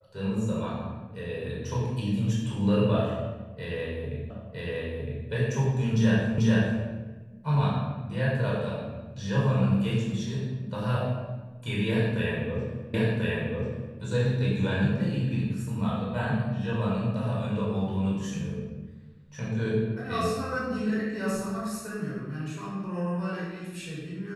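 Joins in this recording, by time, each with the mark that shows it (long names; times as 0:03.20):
0:04.30: the same again, the last 0.96 s
0:06.38: the same again, the last 0.44 s
0:12.94: the same again, the last 1.04 s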